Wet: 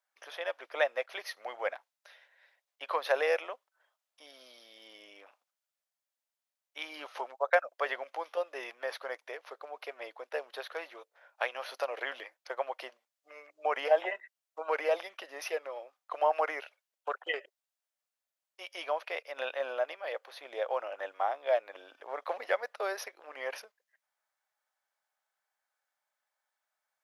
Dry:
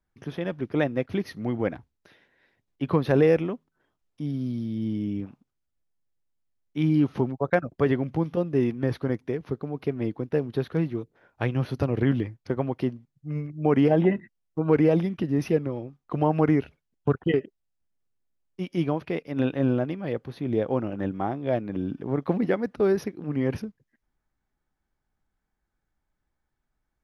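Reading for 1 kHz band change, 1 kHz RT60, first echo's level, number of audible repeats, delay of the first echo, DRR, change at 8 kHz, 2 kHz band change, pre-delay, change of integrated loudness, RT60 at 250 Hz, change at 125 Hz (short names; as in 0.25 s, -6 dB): -0.5 dB, none, none, none, none, none, n/a, +1.0 dB, none, -8.5 dB, none, under -40 dB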